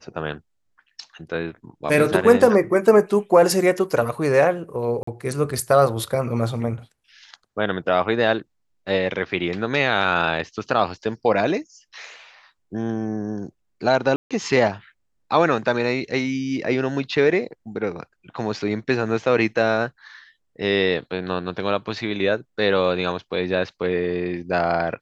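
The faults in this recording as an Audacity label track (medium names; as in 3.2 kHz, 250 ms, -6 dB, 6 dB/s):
5.030000	5.070000	dropout 44 ms
14.160000	14.310000	dropout 146 ms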